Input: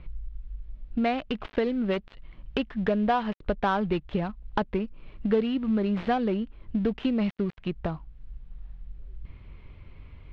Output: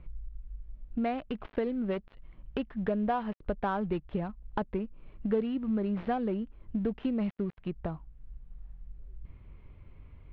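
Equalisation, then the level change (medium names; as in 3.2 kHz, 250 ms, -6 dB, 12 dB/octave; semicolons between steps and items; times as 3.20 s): low-pass 1.5 kHz 6 dB/octave; -4.5 dB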